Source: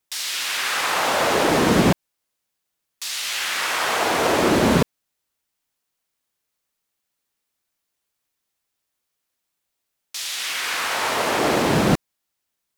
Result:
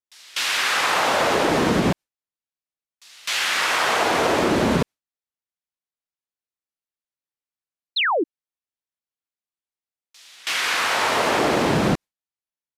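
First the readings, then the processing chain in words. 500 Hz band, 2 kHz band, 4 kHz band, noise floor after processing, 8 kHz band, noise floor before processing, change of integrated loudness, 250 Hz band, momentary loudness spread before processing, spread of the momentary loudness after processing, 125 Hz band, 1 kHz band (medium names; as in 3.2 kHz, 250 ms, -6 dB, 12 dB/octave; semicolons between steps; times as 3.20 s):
-0.5 dB, +1.5 dB, +0.5 dB, under -85 dBFS, -2.5 dB, -79 dBFS, 0.0 dB, -1.5 dB, 9 LU, 9 LU, -2.0 dB, +1.0 dB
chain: gate with hold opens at -16 dBFS; treble shelf 8.8 kHz -8.5 dB; compression, threshold -20 dBFS, peak gain reduction 8.5 dB; painted sound fall, 7.96–8.24 s, 280–4400 Hz -24 dBFS; resampled via 32 kHz; trim +4 dB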